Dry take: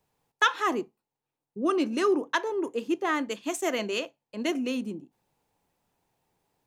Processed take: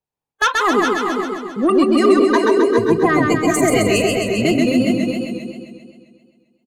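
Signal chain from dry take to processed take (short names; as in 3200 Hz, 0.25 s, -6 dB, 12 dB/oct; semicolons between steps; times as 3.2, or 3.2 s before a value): 2.75–4.52 octaver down 1 oct, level -4 dB; spectral noise reduction 27 dB; in parallel at +2 dB: limiter -20.5 dBFS, peak gain reduction 11 dB; on the sum: sine folder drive 4 dB, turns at -6.5 dBFS; on a send: echo 0.412 s -6.5 dB; on the sum: warbling echo 0.132 s, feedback 63%, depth 63 cents, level -3 dB; gain -2.5 dB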